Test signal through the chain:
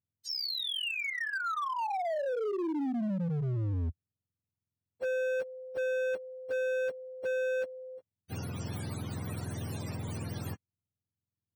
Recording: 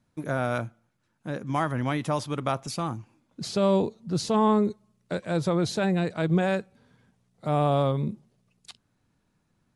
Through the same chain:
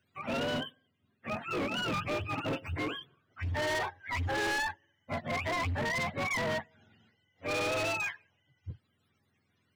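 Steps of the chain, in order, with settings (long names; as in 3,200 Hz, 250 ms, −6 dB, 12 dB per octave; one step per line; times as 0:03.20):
frequency axis turned over on the octave scale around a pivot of 600 Hz
hard clipping −30 dBFS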